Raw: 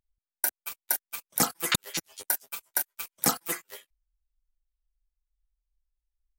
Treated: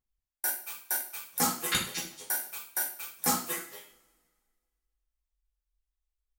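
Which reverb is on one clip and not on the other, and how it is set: two-slope reverb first 0.43 s, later 1.8 s, from -25 dB, DRR -6 dB; gain -8.5 dB

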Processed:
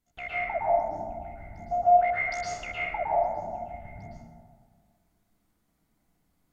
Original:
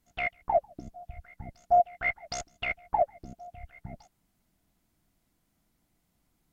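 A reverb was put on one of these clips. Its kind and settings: plate-style reverb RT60 1.7 s, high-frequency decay 0.35×, pre-delay 0.1 s, DRR -8.5 dB; gain -7.5 dB

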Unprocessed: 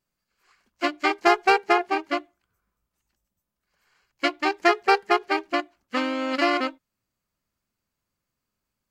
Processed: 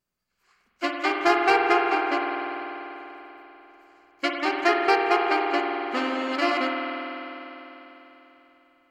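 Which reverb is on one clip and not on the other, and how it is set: spring tank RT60 3.7 s, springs 49 ms, chirp 50 ms, DRR 0.5 dB; gain -2.5 dB

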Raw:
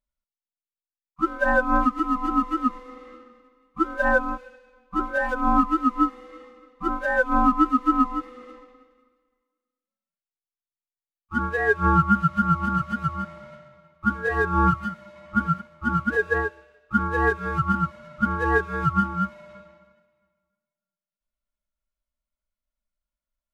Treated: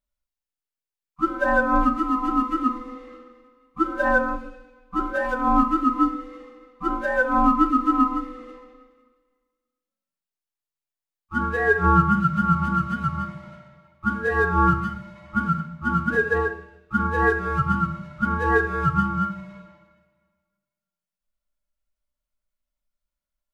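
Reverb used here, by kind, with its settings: shoebox room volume 140 m³, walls mixed, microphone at 0.4 m

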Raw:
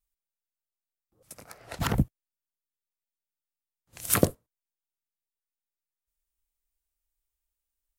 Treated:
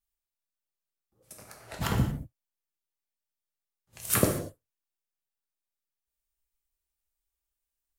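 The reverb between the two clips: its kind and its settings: non-linear reverb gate 0.26 s falling, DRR 0.5 dB; gain -3.5 dB

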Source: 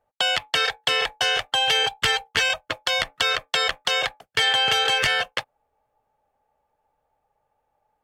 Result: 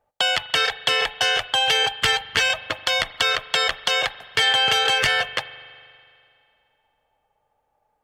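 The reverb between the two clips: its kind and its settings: spring tank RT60 2.4 s, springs 41 ms, chirp 40 ms, DRR 15.5 dB; gain +1.5 dB

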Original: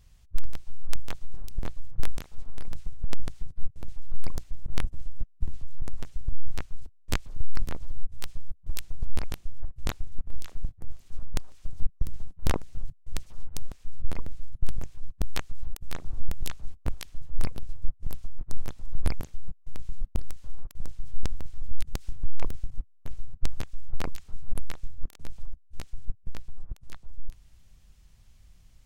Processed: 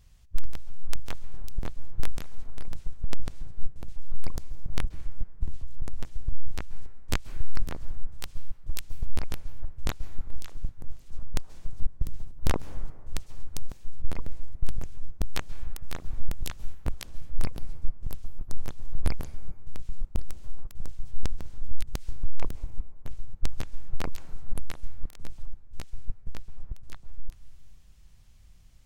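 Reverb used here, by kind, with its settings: plate-style reverb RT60 1.9 s, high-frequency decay 0.4×, pre-delay 0.12 s, DRR 16.5 dB

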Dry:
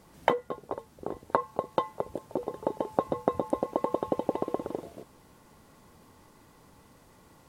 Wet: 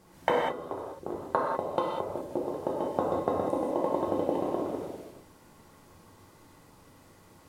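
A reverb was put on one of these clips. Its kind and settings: non-linear reverb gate 0.22 s flat, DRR -3.5 dB; gain -3.5 dB

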